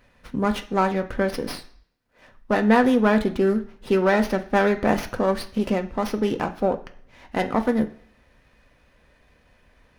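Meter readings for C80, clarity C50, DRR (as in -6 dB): 18.0 dB, 14.5 dB, 4.0 dB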